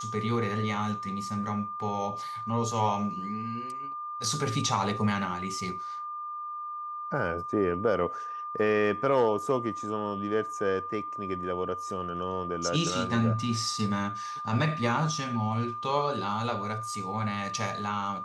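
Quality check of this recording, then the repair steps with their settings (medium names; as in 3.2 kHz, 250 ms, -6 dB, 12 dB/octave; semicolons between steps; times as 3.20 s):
whine 1.2 kHz -34 dBFS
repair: band-stop 1.2 kHz, Q 30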